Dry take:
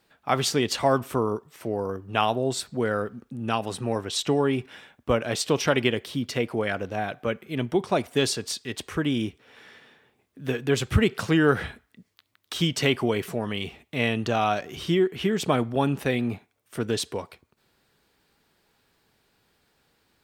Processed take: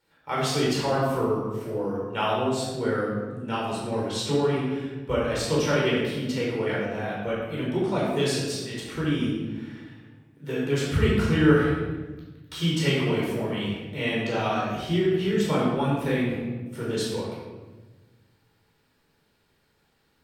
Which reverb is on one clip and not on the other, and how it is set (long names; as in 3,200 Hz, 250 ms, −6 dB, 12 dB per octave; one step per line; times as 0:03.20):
rectangular room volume 870 cubic metres, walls mixed, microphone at 4.5 metres
level −10 dB